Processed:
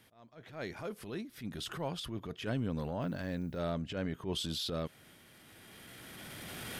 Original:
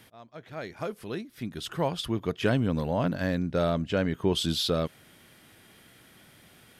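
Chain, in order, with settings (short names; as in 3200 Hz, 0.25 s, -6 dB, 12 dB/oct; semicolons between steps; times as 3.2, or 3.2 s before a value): recorder AGC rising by 12 dB/s; transient shaper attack -10 dB, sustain +3 dB; 3–3.59 added noise violet -65 dBFS; gain -8.5 dB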